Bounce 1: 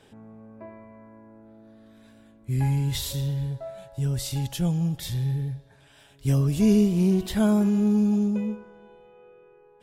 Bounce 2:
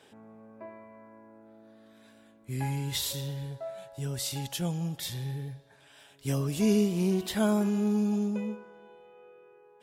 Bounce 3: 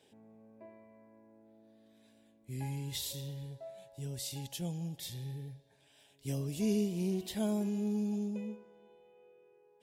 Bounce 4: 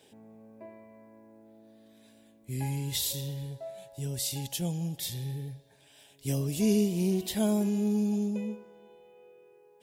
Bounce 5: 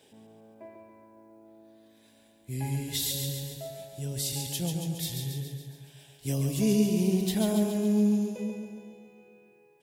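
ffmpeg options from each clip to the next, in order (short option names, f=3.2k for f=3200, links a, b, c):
-af "highpass=f=360:p=1"
-af "equalizer=f=1.3k:w=1.8:g=-13.5,volume=-6.5dB"
-af "crystalizer=i=0.5:c=0,volume=6dB"
-af "aecho=1:1:139|278|417|556|695|834|973|1112:0.562|0.326|0.189|0.11|0.0636|0.0369|0.0214|0.0124"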